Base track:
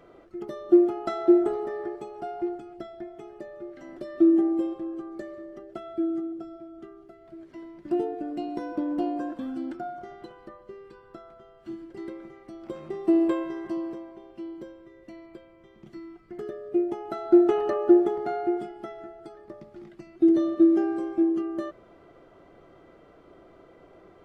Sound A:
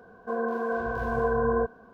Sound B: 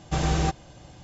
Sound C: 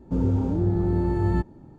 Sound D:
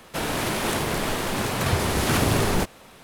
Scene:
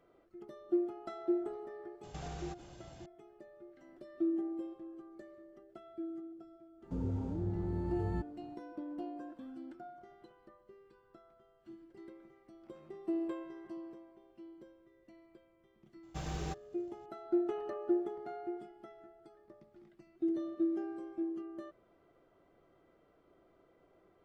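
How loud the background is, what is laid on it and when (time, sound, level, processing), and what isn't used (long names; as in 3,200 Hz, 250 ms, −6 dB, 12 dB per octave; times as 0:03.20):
base track −14.5 dB
0:02.03: mix in B −6.5 dB + downward compressor, threshold −35 dBFS
0:06.80: mix in C −13.5 dB, fades 0.05 s + one half of a high-frequency compander encoder only
0:16.03: mix in B −15 dB + mu-law and A-law mismatch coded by A
not used: A, D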